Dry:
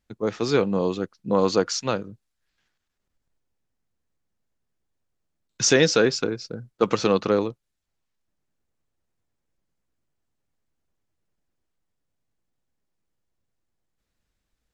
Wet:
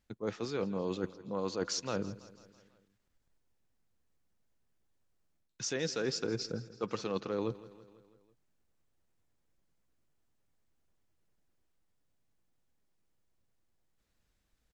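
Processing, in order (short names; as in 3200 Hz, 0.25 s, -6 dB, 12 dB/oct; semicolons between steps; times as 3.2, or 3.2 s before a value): reverse; compressor 12:1, threshold -31 dBFS, peak gain reduction 19 dB; reverse; feedback echo 0.165 s, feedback 60%, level -18 dB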